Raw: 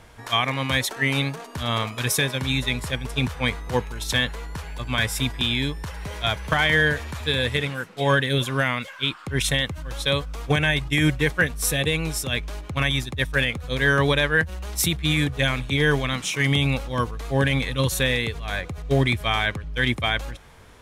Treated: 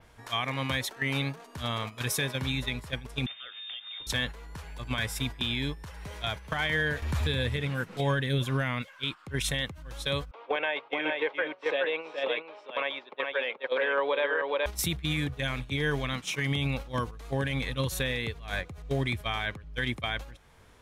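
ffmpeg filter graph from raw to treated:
-filter_complex "[0:a]asettb=1/sr,asplit=3[s0][s1][s2];[s0]atrim=end=3.264[s3];[s1]atrim=start=3.26:end=4.07,asetpts=PTS-STARTPTS,afade=t=in:d=0.004:c=qsin,afade=t=out:st=0.806:d=0.004:c=qsin,acompressor=threshold=0.0398:ratio=8:attack=3.2:release=140:knee=1:detection=peak,lowpass=f=3100:t=q:w=0.5098,lowpass=f=3100:t=q:w=0.6013,lowpass=f=3100:t=q:w=0.9,lowpass=f=3100:t=q:w=2.563,afreqshift=-3700[s4];[s2]atrim=start=4.066[s5];[s3][s4]acrossfade=d=0.004:c1=hsin:c2=qsin[s6];[s6][s5]acrossfade=d=0.004:c1=qsin:c2=hsin,asettb=1/sr,asplit=3[s7][s8][s9];[s7]atrim=end=7.024[s10];[s8]atrim=start=7.02:end=8.82,asetpts=PTS-STARTPTS,afade=t=in:d=0.004:c=qsin,afade=t=out:st=1.796:d=0.004:c=qsin,lowshelf=f=230:g=7.5,acompressor=mode=upward:threshold=0.0794:ratio=2.5:attack=3.2:release=140:knee=2.83:detection=peak[s11];[s9]atrim=start=8.816[s12];[s10][s11]acrossfade=d=0.004:c1=hsin:c2=qsin[s13];[s13][s12]acrossfade=d=0.004:c1=qsin:c2=hsin,asettb=1/sr,asplit=3[s14][s15][s16];[s14]atrim=end=10.314[s17];[s15]atrim=start=10.31:end=14.66,asetpts=PTS-STARTPTS,afade=t=in:d=0.004:c=qsin,afade=t=out:st=4.346:d=0.004:c=qsin,highpass=f=370:w=0.5412,highpass=f=370:w=1.3066,equalizer=f=540:t=q:w=4:g=7,equalizer=f=930:t=q:w=4:g=7,equalizer=f=1800:t=q:w=4:g=-4,lowpass=f=3100:w=0.5412,lowpass=f=3100:w=1.3066,aecho=1:1:424:0.631,atrim=end_sample=191835[s18];[s16]atrim=start=14.656[s19];[s17][s18]acrossfade=d=0.004:c1=hsin:c2=qsin[s20];[s20][s19]acrossfade=d=0.004:c1=qsin:c2=hsin,agate=range=0.398:threshold=0.0447:ratio=16:detection=peak,adynamicequalizer=threshold=0.00562:dfrequency=8300:dqfactor=1:tfrequency=8300:tqfactor=1:attack=5:release=100:ratio=0.375:range=2.5:mode=cutabove:tftype=bell,alimiter=limit=0.119:level=0:latency=1:release=446"

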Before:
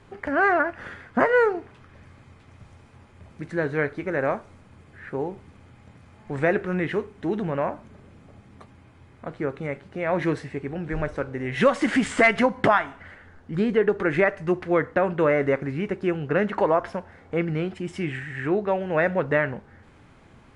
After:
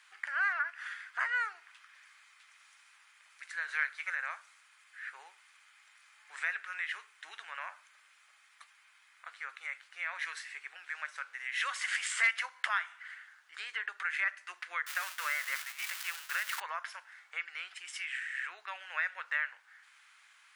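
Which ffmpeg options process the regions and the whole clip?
-filter_complex "[0:a]asettb=1/sr,asplit=3[s0][s1][s2];[s0]atrim=end=3.684[s3];[s1]atrim=start=3.68:end=4.15,asetpts=PTS-STARTPTS,afade=t=in:d=0.004:c=qsin,afade=t=out:st=0.466:d=0.004:c=qsin,highpass=f=350:w=0.5412,highpass=f=350:w=1.3066,acontrast=21[s4];[s2]atrim=start=4.146[s5];[s3][s4]acrossfade=d=0.004:c1=hsin:c2=qsin[s6];[s6][s5]acrossfade=d=0.004:c1=qsin:c2=hsin,asettb=1/sr,asplit=3[s7][s8][s9];[s7]atrim=end=14.864[s10];[s8]atrim=start=14.86:end=16.6,asetpts=PTS-STARTPTS,afade=t=in:d=0.004:c=qsin,afade=t=out:st=1.736:d=0.004:c=qsin,aeval=exprs='val(0)+0.5*0.0422*sgn(val(0))':c=same,highpass=f=440:w=0.5412,highpass=f=440:w=1.3066,agate=range=0.0224:threshold=0.02:ratio=3:release=100:detection=peak[s11];[s9]atrim=start=16.596[s12];[s10][s11]acrossfade=d=0.004:c1=hsin:c2=qsin[s13];[s13][s12]acrossfade=d=0.004:c1=qsin:c2=hsin,highpass=f=1400:w=0.5412,highpass=f=1400:w=1.3066,highshelf=f=7000:g=7,acompressor=threshold=0.0126:ratio=1.5"

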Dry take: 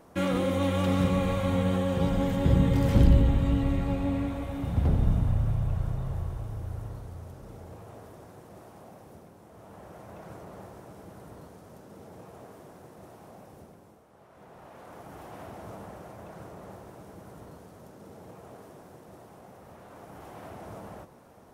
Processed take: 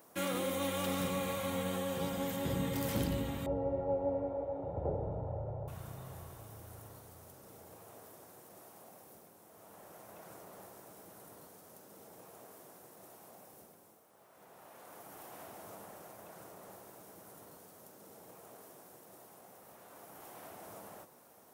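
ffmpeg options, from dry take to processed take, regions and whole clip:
-filter_complex "[0:a]asettb=1/sr,asplit=3[s0][s1][s2];[s0]atrim=end=3.464[s3];[s1]atrim=start=3.46:end=5.68,asetpts=PTS-STARTPTS,afade=t=in:d=0.004:c=qsin,afade=t=out:st=2.216:d=0.004:c=qsin,lowpass=f=650:t=q:w=4.7,aecho=1:1:2.2:0.67,atrim=end_sample=97902[s4];[s2]atrim=start=5.676[s5];[s3][s4]acrossfade=d=0.004:c1=hsin:c2=qsin[s6];[s6][s5]acrossfade=d=0.004:c1=qsin:c2=hsin,highpass=66,aemphasis=mode=production:type=bsi,volume=0.501"

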